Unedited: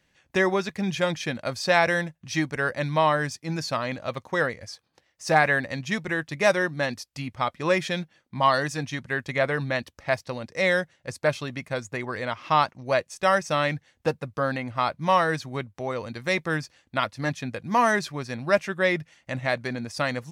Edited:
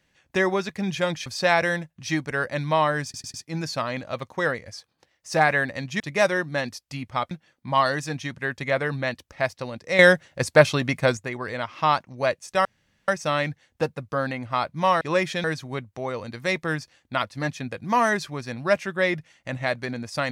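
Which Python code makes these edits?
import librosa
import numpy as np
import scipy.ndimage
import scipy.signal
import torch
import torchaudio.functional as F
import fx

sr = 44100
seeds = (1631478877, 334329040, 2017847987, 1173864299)

y = fx.edit(x, sr, fx.cut(start_s=1.26, length_s=0.25),
    fx.stutter(start_s=3.29, slice_s=0.1, count=4),
    fx.cut(start_s=5.95, length_s=0.3),
    fx.move(start_s=7.56, length_s=0.43, to_s=15.26),
    fx.clip_gain(start_s=10.67, length_s=1.18, db=9.0),
    fx.insert_room_tone(at_s=13.33, length_s=0.43), tone=tone)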